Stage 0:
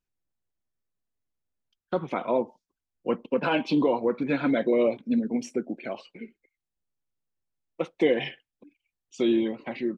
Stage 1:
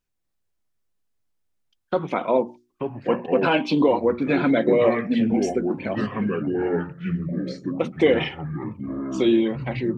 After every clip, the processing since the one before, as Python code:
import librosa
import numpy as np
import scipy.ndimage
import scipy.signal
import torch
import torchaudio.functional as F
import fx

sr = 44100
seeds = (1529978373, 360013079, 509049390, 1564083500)

y = fx.hum_notches(x, sr, base_hz=60, count=6)
y = fx.echo_pitch(y, sr, ms=238, semitones=-5, count=3, db_per_echo=-6.0)
y = y * librosa.db_to_amplitude(5.0)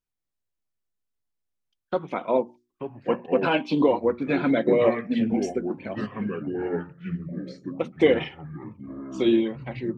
y = fx.upward_expand(x, sr, threshold_db=-30.0, expansion=1.5)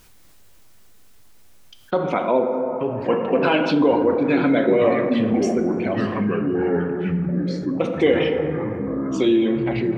y = fx.rev_plate(x, sr, seeds[0], rt60_s=2.3, hf_ratio=0.35, predelay_ms=0, drr_db=7.0)
y = fx.env_flatten(y, sr, amount_pct=50)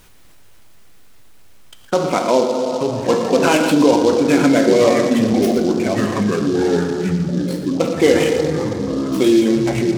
y = x + 10.0 ** (-12.0 / 20.0) * np.pad(x, (int(116 * sr / 1000.0), 0))[:len(x)]
y = fx.noise_mod_delay(y, sr, seeds[1], noise_hz=4300.0, depth_ms=0.034)
y = y * librosa.db_to_amplitude(4.0)